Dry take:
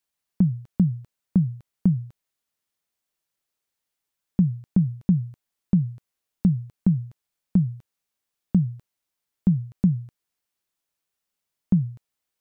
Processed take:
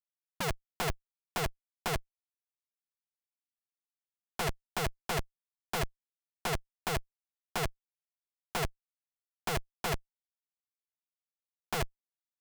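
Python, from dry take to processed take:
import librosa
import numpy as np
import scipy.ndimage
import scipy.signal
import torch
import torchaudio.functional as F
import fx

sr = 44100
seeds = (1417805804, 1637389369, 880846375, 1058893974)

y = fx.schmitt(x, sr, flips_db=-21.5)
y = fx.graphic_eq(y, sr, hz=(125, 250, 500), db=(-10, 10, -9))
y = (np.mod(10.0 ** (31.0 / 20.0) * y + 1.0, 2.0) - 1.0) / 10.0 ** (31.0 / 20.0)
y = y * 10.0 ** (5.0 / 20.0)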